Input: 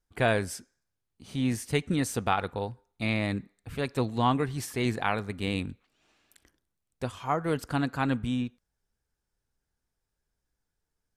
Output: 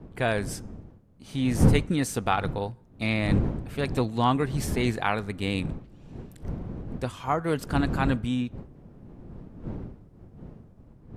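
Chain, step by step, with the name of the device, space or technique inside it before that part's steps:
smartphone video outdoors (wind on the microphone 200 Hz −34 dBFS; automatic gain control gain up to 3.5 dB; level −1.5 dB; AAC 96 kbit/s 48,000 Hz)

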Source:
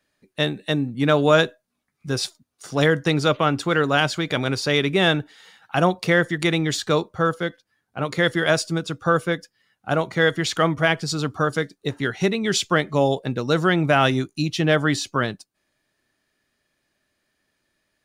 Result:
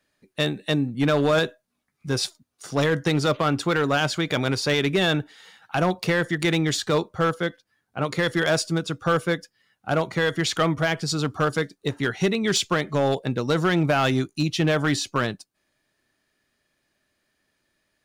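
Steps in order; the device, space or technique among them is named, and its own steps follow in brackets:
limiter into clipper (brickwall limiter −9.5 dBFS, peak gain reduction 5 dB; hard clipping −14.5 dBFS, distortion −16 dB)

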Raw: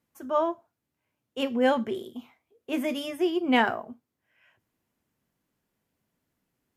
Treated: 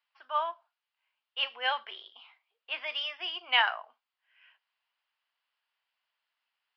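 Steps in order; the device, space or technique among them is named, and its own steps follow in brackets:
musical greeting card (downsampling to 11,025 Hz; high-pass filter 880 Hz 24 dB per octave; parametric band 2,900 Hz +7.5 dB 0.37 octaves)

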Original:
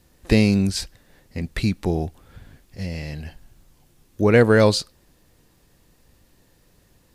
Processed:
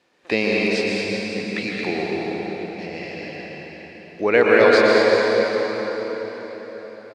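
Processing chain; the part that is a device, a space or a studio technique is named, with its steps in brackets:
station announcement (band-pass filter 400–3,900 Hz; parametric band 2,400 Hz +5 dB 0.24 octaves; loudspeakers that aren't time-aligned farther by 53 metres −10 dB, 77 metres −6 dB; convolution reverb RT60 5.0 s, pre-delay 108 ms, DRR −2.5 dB)
level +1 dB

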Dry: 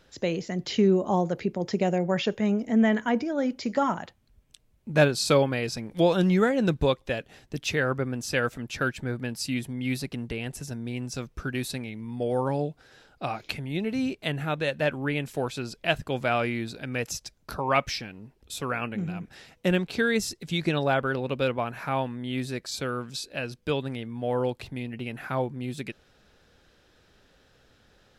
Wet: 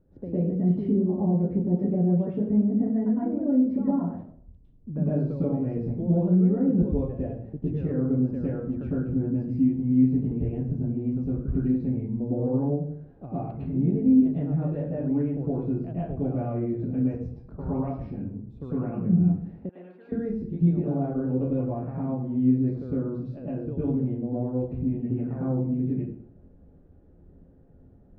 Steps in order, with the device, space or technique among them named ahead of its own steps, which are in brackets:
television next door (downward compressor 4 to 1, threshold −29 dBFS, peak gain reduction 12.5 dB; low-pass filter 330 Hz 12 dB per octave; convolution reverb RT60 0.60 s, pre-delay 100 ms, DRR −9.5 dB)
0:19.69–0:20.12: high-pass filter 980 Hz 12 dB per octave

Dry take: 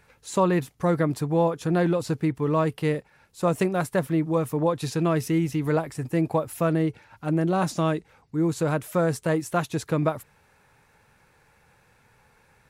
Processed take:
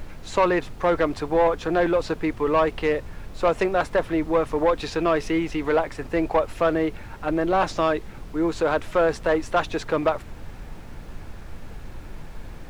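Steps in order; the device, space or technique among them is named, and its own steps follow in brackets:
aircraft cabin announcement (band-pass filter 440–3,700 Hz; soft clipping −20 dBFS, distortion −14 dB; brown noise bed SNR 11 dB)
level +8 dB

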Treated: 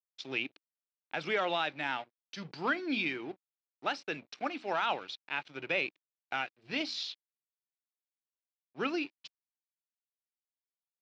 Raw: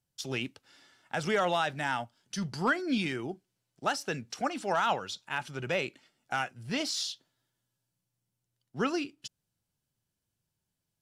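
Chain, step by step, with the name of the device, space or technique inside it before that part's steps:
mains-hum notches 60/120/180/240 Hz
blown loudspeaker (dead-zone distortion −48 dBFS; loudspeaker in its box 190–4,800 Hz, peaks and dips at 210 Hz −4 dB, 310 Hz +5 dB, 2,400 Hz +9 dB, 3,900 Hz +5 dB)
level −3.5 dB

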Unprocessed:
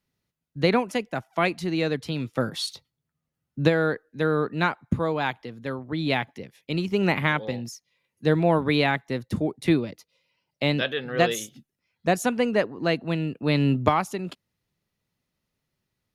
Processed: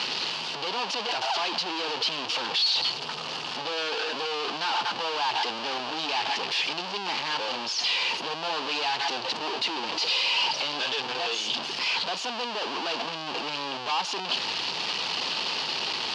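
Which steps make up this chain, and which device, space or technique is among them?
0:10.85–0:11.27: parametric band 110 Hz +11.5 dB 0.79 octaves
home computer beeper (sign of each sample alone; loudspeaker in its box 550–4,900 Hz, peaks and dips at 580 Hz −6 dB, 900 Hz +5 dB, 1,400 Hz −4 dB, 2,000 Hz −8 dB, 2,900 Hz +8 dB, 4,600 Hz +8 dB)

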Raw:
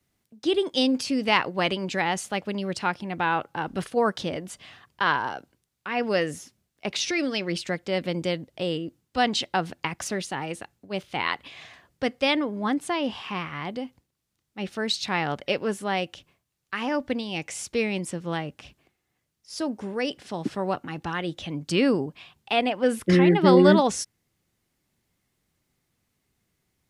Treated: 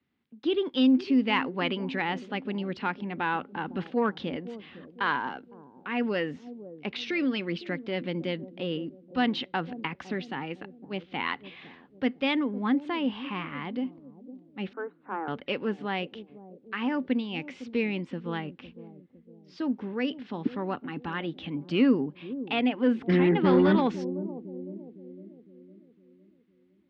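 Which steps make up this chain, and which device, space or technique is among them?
0:14.73–0:15.28: Chebyshev band-pass filter 320–1,500 Hz, order 4
analogue delay pedal into a guitar amplifier (bucket-brigade delay 507 ms, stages 2,048, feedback 47%, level −14.5 dB; tube saturation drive 12 dB, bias 0.2; loudspeaker in its box 81–3,500 Hz, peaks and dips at 110 Hz −10 dB, 250 Hz +8 dB, 640 Hz −8 dB)
level −2.5 dB

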